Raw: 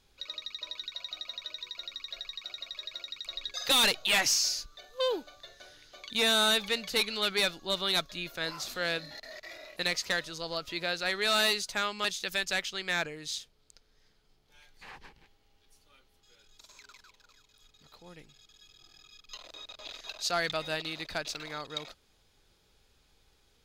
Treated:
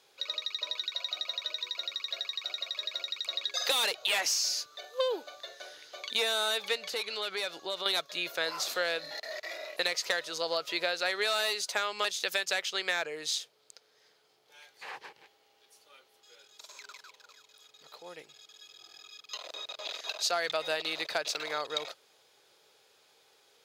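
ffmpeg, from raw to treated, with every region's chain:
ffmpeg -i in.wav -filter_complex "[0:a]asettb=1/sr,asplit=3[link_01][link_02][link_03];[link_01]atrim=end=6.764[link_04];[link_02]atrim=start=6.76:end=7.86,asetpts=PTS-STARTPTS,afade=type=in:duration=0.004:curve=qsin,afade=type=out:start_time=1.096:duration=0.004:curve=qsin,highshelf=frequency=12000:gain=-6,acompressor=threshold=-38dB:ratio=4:attack=3.2:release=140:knee=1:detection=peak[link_05];[link_03]atrim=start=7.856[link_06];[link_04][link_05]acrossfade=duration=0.004:curve1=hsin:curve2=qsin[link_07];[link_07][link_06]acrossfade=duration=0.004:curve1=qsin:curve2=hsin,highpass=frequency=120:width=0.5412,highpass=frequency=120:width=1.3066,lowshelf=frequency=320:width_type=q:width=1.5:gain=-12,acompressor=threshold=-31dB:ratio=10,volume=5dB" out.wav

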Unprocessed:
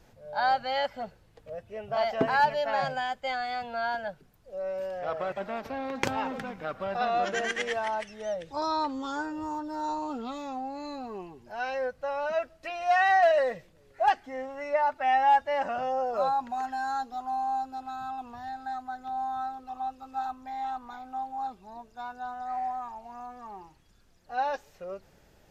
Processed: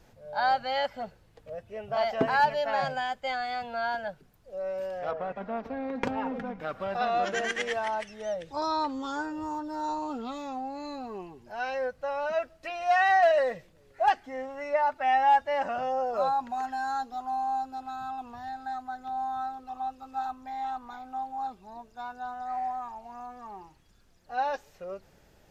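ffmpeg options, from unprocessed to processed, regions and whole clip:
ffmpeg -i in.wav -filter_complex "[0:a]asettb=1/sr,asplit=3[link_01][link_02][link_03];[link_01]atrim=end=5.114[link_04];[link_02]atrim=start=5.11:end=6.6,asetpts=PTS-STARTPTS,afade=type=in:duration=0.004:curve=qsin,afade=type=out:start_time=1.486:duration=0.004:curve=qsin,lowpass=frequency=1200:poles=1,aecho=1:1:4.2:0.51,atrim=end_sample=65709[link_05];[link_03]atrim=start=6.596[link_06];[link_04][link_05]acrossfade=duration=0.004:curve1=hsin:curve2=qsin[link_07];[link_07][link_06]acrossfade=duration=0.004:curve1=qsin:curve2=hsin" out.wav

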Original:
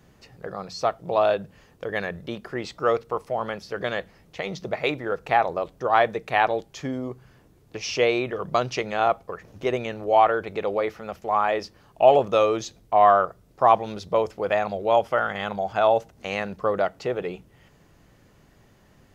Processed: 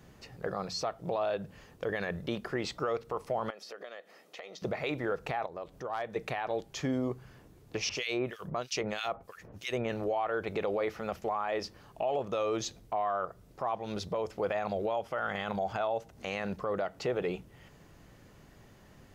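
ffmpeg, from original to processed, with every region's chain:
ffmpeg -i in.wav -filter_complex "[0:a]asettb=1/sr,asplit=3[link_01][link_02][link_03];[link_01]atrim=end=3.504[link_04];[link_02]atrim=start=3.5:end=4.62,asetpts=PTS-STARTPTS,afade=type=in:duration=0.004:curve=qsin,afade=type=out:start_time=1.116:duration=0.004:curve=qsin,highpass=frequency=280:width=0.5412,highpass=frequency=280:width=1.3066,aecho=1:1:1.6:0.31,atrim=end_sample=49392,acompressor=threshold=-43dB:ratio=5:attack=3.2:release=140:knee=1:detection=peak[link_05];[link_03]atrim=start=4.616[link_06];[link_04][link_05]acrossfade=duration=0.004:curve1=hsin:curve2=qsin[link_07];[link_07][link_06]acrossfade=duration=0.004:curve1=qsin:curve2=hsin,asettb=1/sr,asplit=3[link_08][link_09][link_10];[link_08]atrim=end=5.464[link_11];[link_09]atrim=start=5.46:end=6.16,asetpts=PTS-STARTPTS,afade=type=in:duration=0.004:curve=qsin,afade=type=out:start_time=0.696:duration=0.004:curve=qsin,acompressor=threshold=-45dB:ratio=2:attack=3.2:release=140:knee=1:detection=peak,asoftclip=type=hard:threshold=-25.5dB[link_12];[link_10]atrim=start=6.156[link_13];[link_11][link_12]acrossfade=duration=0.004:curve1=hsin:curve2=qsin[link_14];[link_14][link_13]acrossfade=duration=0.004:curve1=qsin:curve2=hsin,asettb=1/sr,asplit=3[link_15][link_16][link_17];[link_15]atrim=end=7.894[link_18];[link_16]atrim=start=7.89:end=9.9,asetpts=PTS-STARTPTS,afade=type=in:duration=0.004:curve=qsin,afade=type=out:start_time=2.006:duration=0.004:curve=qsin,highshelf=frequency=4600:gain=8,acrossover=split=1900[link_19][link_20];[link_19]aeval=exprs='val(0)*(1-1/2+1/2*cos(2*PI*3.1*n/s))':channel_layout=same[link_21];[link_20]aeval=exprs='val(0)*(1-1/2-1/2*cos(2*PI*3.1*n/s))':channel_layout=same[link_22];[link_21][link_22]amix=inputs=2:normalize=0[link_23];[link_17]atrim=start=9.896[link_24];[link_18][link_23]acrossfade=duration=0.004:curve1=hsin:curve2=qsin[link_25];[link_25][link_24]acrossfade=duration=0.004:curve1=qsin:curve2=hsin,acompressor=threshold=-25dB:ratio=6,alimiter=limit=-22.5dB:level=0:latency=1:release=27" out.wav

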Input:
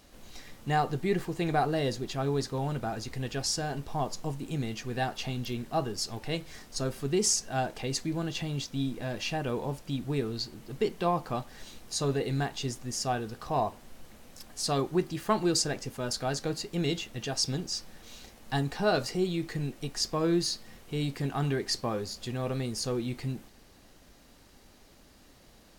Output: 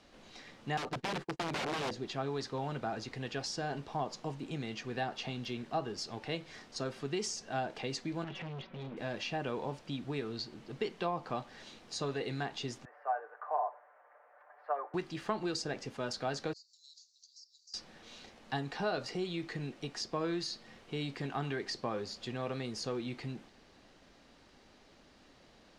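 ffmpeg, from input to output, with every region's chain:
ffmpeg -i in.wav -filter_complex "[0:a]asettb=1/sr,asplit=3[link_01][link_02][link_03];[link_01]atrim=end=0.774[link_04];[link_02]atrim=start=0.77:end=1.91,asetpts=PTS-STARTPTS,afade=type=in:duration=0.004:curve=qsin,afade=type=out:start_time=1.136:duration=0.004:curve=qsin,agate=range=-39dB:threshold=-37dB:ratio=16:release=100:detection=peak,aeval=exprs='(mod(16.8*val(0)+1,2)-1)/16.8':channel_layout=same[link_05];[link_03]atrim=start=1.906[link_06];[link_04][link_05]acrossfade=duration=0.004:curve1=hsin:curve2=qsin[link_07];[link_07][link_06]acrossfade=duration=0.004:curve1=qsin:curve2=hsin,asettb=1/sr,asplit=3[link_08][link_09][link_10];[link_08]atrim=end=8.244[link_11];[link_09]atrim=start=8.24:end=8.97,asetpts=PTS-STARTPTS,afade=type=in:duration=0.004:curve=qsin,afade=type=out:start_time=0.726:duration=0.004:curve=qsin,lowpass=frequency=2600:width=0.5412,lowpass=frequency=2600:width=1.3066,aecho=1:1:5.3:0.9,atrim=end_sample=32193,volume=36dB,asoftclip=hard,volume=-36dB[link_12];[link_10]atrim=start=8.966[link_13];[link_11][link_12]acrossfade=duration=0.004:curve1=hsin:curve2=qsin[link_14];[link_14][link_13]acrossfade=duration=0.004:curve1=qsin:curve2=hsin,asettb=1/sr,asplit=3[link_15][link_16][link_17];[link_15]atrim=end=12.854[link_18];[link_16]atrim=start=12.85:end=14.94,asetpts=PTS-STARTPTS,afade=type=in:duration=0.004:curve=qsin,afade=type=out:start_time=2.086:duration=0.004:curve=qsin,asuperpass=centerf=1000:order=8:qfactor=0.78,aemphasis=mode=reproduction:type=50fm,aecho=1:1:6.8:0.57,atrim=end_sample=92169[link_19];[link_17]atrim=start=14.936[link_20];[link_18][link_19]acrossfade=duration=0.004:curve1=hsin:curve2=qsin[link_21];[link_21][link_20]acrossfade=duration=0.004:curve1=qsin:curve2=hsin,asettb=1/sr,asplit=3[link_22][link_23][link_24];[link_22]atrim=end=16.534[link_25];[link_23]atrim=start=16.53:end=17.74,asetpts=PTS-STARTPTS,afade=type=in:duration=0.004:curve=qsin,afade=type=out:start_time=1.206:duration=0.004:curve=qsin,asuperpass=centerf=5700:order=12:qfactor=1.7,acompressor=threshold=-48dB:ratio=8:attack=3.2:release=140:knee=1:detection=peak[link_26];[link_24]atrim=start=17.736[link_27];[link_25][link_26]acrossfade=duration=0.004:curve1=hsin:curve2=qsin[link_28];[link_28][link_27]acrossfade=duration=0.004:curve1=qsin:curve2=hsin,lowpass=4700,acrossover=split=84|780[link_29][link_30][link_31];[link_29]acompressor=threshold=-56dB:ratio=4[link_32];[link_30]acompressor=threshold=-32dB:ratio=4[link_33];[link_31]acompressor=threshold=-36dB:ratio=4[link_34];[link_32][link_33][link_34]amix=inputs=3:normalize=0,lowshelf=frequency=130:gain=-9,volume=-1dB" out.wav

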